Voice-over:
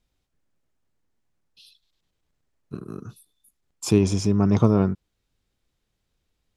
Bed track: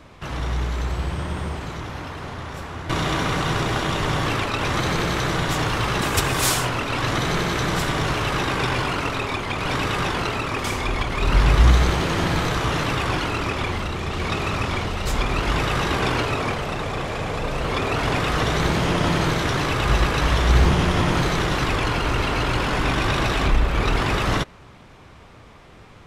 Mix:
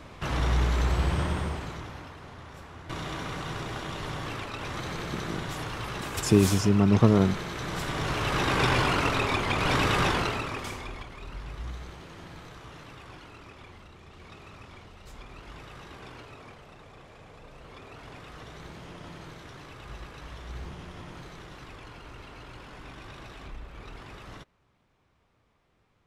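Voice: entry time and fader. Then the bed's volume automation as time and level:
2.40 s, −1.5 dB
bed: 0:01.21 0 dB
0:02.19 −12.5 dB
0:07.54 −12.5 dB
0:08.64 −1 dB
0:10.09 −1 dB
0:11.39 −23.5 dB

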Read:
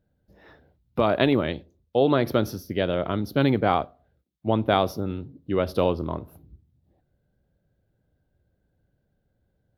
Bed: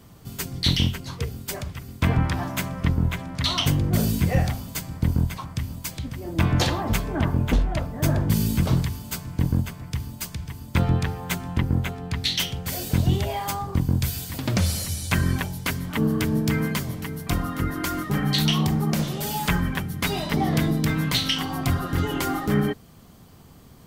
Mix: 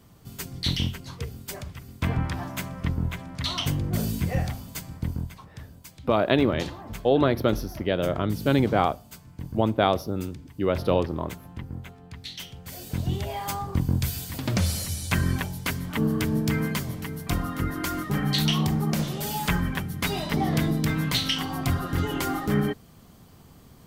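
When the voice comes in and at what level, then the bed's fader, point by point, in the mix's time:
5.10 s, −0.5 dB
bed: 0:04.91 −5 dB
0:05.53 −14 dB
0:12.36 −14 dB
0:13.55 −2 dB

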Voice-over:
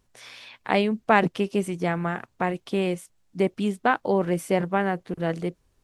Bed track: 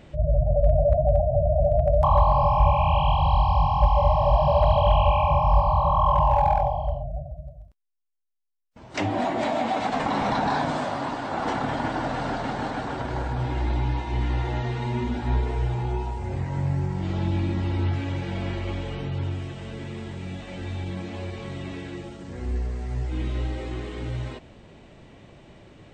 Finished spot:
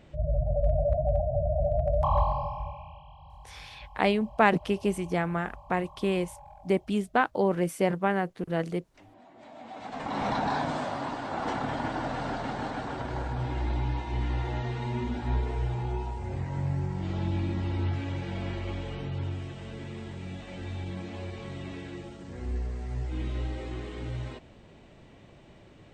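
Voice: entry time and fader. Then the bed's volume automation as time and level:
3.30 s, −2.5 dB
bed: 0:02.21 −6 dB
0:03.06 −29.5 dB
0:09.26 −29.5 dB
0:10.24 −4.5 dB

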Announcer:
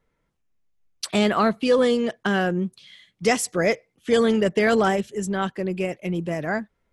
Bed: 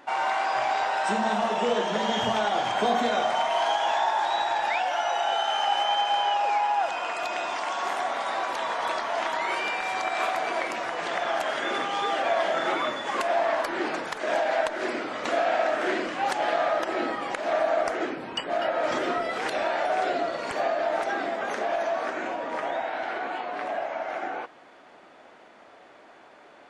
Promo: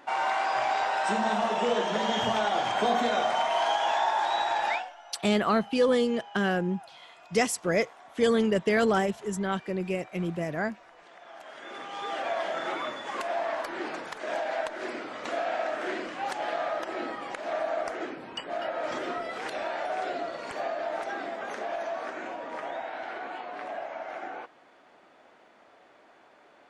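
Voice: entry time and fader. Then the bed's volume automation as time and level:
4.10 s, −4.5 dB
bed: 0:04.74 −1.5 dB
0:04.95 −23 dB
0:11.17 −23 dB
0:12.16 −6 dB

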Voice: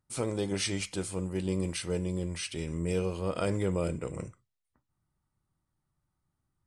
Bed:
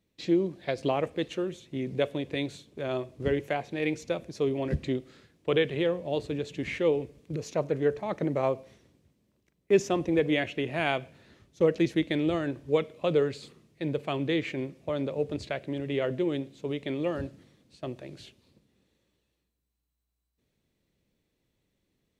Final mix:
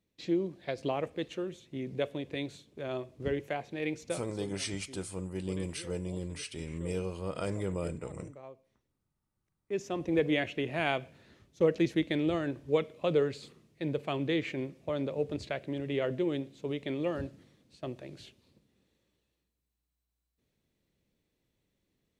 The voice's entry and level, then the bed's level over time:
4.00 s, −4.5 dB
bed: 0:04.12 −5 dB
0:04.58 −21.5 dB
0:09.32 −21.5 dB
0:10.16 −2.5 dB

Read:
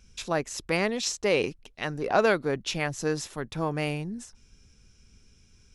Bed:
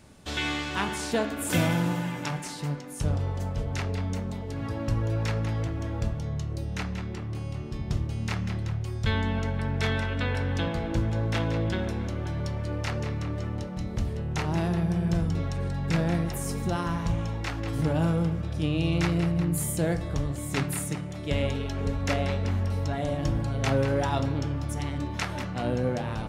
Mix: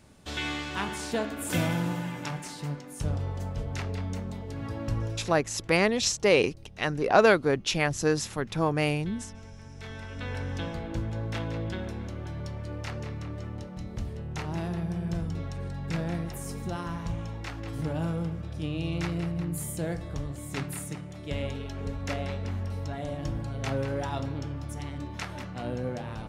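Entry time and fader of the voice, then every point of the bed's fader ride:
5.00 s, +3.0 dB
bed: 0:05.03 −3 dB
0:05.39 −18 dB
0:09.71 −18 dB
0:10.36 −5.5 dB

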